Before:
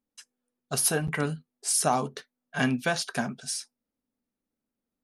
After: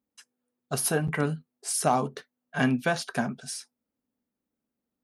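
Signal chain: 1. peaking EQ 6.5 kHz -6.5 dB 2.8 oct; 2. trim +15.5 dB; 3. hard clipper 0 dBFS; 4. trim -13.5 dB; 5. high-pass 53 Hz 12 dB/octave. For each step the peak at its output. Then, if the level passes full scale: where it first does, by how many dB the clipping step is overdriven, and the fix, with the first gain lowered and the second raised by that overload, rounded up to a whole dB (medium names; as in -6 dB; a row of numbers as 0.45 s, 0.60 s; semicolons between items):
-12.5 dBFS, +3.0 dBFS, 0.0 dBFS, -13.5 dBFS, -12.0 dBFS; step 2, 3.0 dB; step 2 +12.5 dB, step 4 -10.5 dB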